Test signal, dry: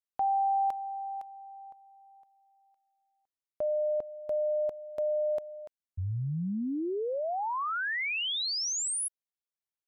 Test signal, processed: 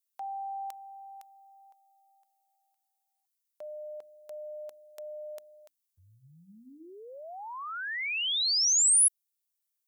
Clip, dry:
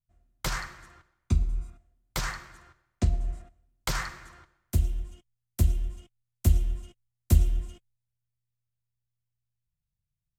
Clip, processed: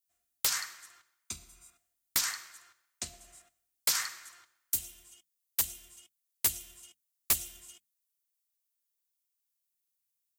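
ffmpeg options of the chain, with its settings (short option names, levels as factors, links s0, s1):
-af "aderivative,aeval=exprs='(mod(15.8*val(0)+1,2)-1)/15.8':c=same,bandreject=f=60:t=h:w=6,bandreject=f=120:t=h:w=6,bandreject=f=180:t=h:w=6,bandreject=f=240:t=h:w=6,bandreject=f=300:t=h:w=6,volume=2.82"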